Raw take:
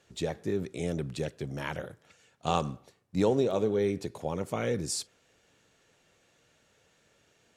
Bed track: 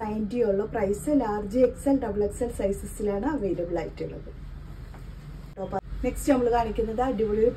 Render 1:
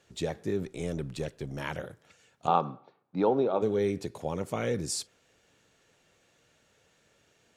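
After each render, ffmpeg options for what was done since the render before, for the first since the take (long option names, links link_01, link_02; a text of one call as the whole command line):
ffmpeg -i in.wav -filter_complex "[0:a]asettb=1/sr,asplit=3[link_01][link_02][link_03];[link_01]atrim=end=0.664[link_04];[link_02]atrim=start=0.66:end=1.58,asetpts=PTS-STARTPTS,afade=type=in:duration=0.004:curve=qsin,afade=type=out:start_time=0.916:duration=0.004:curve=qsin,aeval=exprs='if(lt(val(0),0),0.708*val(0),val(0))':channel_layout=same[link_05];[link_03]atrim=start=1.576[link_06];[link_04][link_05]acrossfade=duration=0.004:curve1=hsin:curve2=qsin[link_07];[link_07][link_06]acrossfade=duration=0.004:curve1=qsin:curve2=hsin,asplit=3[link_08][link_09][link_10];[link_08]afade=type=out:start_time=2.46:duration=0.02[link_11];[link_09]highpass=frequency=150:width=0.5412,highpass=frequency=150:width=1.3066,equalizer=frequency=200:width_type=q:width=4:gain=-4,equalizer=frequency=840:width_type=q:width=4:gain=8,equalizer=frequency=1300:width_type=q:width=4:gain=6,equalizer=frequency=1900:width_type=q:width=4:gain=-8,equalizer=frequency=2900:width_type=q:width=4:gain=-8,lowpass=frequency=3400:width=0.5412,lowpass=frequency=3400:width=1.3066,afade=type=in:start_time=2.46:duration=0.02,afade=type=out:start_time=3.61:duration=0.02[link_12];[link_10]afade=type=in:start_time=3.61:duration=0.02[link_13];[link_11][link_12][link_13]amix=inputs=3:normalize=0" out.wav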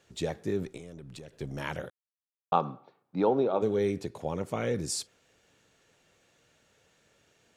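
ffmpeg -i in.wav -filter_complex "[0:a]asettb=1/sr,asplit=3[link_01][link_02][link_03];[link_01]atrim=end=0.774[link_04];[link_02]atrim=start=0.77:end=1.4,asetpts=PTS-STARTPTS,afade=type=in:duration=0.004:curve=qsin,afade=type=out:start_time=0.626:duration=0.004:curve=qsin,acompressor=threshold=-41dB:ratio=10:attack=3.2:release=140:knee=1:detection=peak[link_05];[link_03]atrim=start=1.396[link_06];[link_04][link_05]acrossfade=duration=0.004:curve1=hsin:curve2=qsin[link_07];[link_07][link_06]acrossfade=duration=0.004:curve1=qsin:curve2=hsin,asettb=1/sr,asplit=3[link_08][link_09][link_10];[link_08]atrim=end=4.024[link_11];[link_09]atrim=start=4.02:end=4.76,asetpts=PTS-STARTPTS,afade=type=in:duration=0.004:curve=qsin,afade=type=out:start_time=0.736:duration=0.004:curve=qsin,highshelf=frequency=4900:gain=-5[link_12];[link_10]atrim=start=4.756[link_13];[link_11][link_12]acrossfade=duration=0.004:curve1=hsin:curve2=qsin[link_14];[link_14][link_13]acrossfade=duration=0.004:curve1=qsin:curve2=hsin,asplit=3[link_15][link_16][link_17];[link_15]atrim=end=1.9,asetpts=PTS-STARTPTS,afade=type=out:start_time=1.896:duration=0.004:curve=hsin[link_18];[link_16]atrim=start=1.9:end=2.52,asetpts=PTS-STARTPTS,volume=0[link_19];[link_17]atrim=start=2.52,asetpts=PTS-STARTPTS,afade=type=in:duration=0.004:curve=hsin[link_20];[link_18][link_19][link_20]concat=n=3:v=0:a=1" out.wav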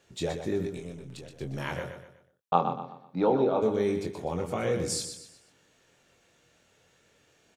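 ffmpeg -i in.wav -filter_complex "[0:a]asplit=2[link_01][link_02];[link_02]adelay=23,volume=-5.5dB[link_03];[link_01][link_03]amix=inputs=2:normalize=0,asplit=2[link_04][link_05];[link_05]aecho=0:1:123|246|369|492:0.398|0.151|0.0575|0.0218[link_06];[link_04][link_06]amix=inputs=2:normalize=0" out.wav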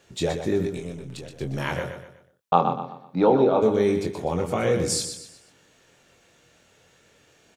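ffmpeg -i in.wav -af "volume=6dB,alimiter=limit=-2dB:level=0:latency=1" out.wav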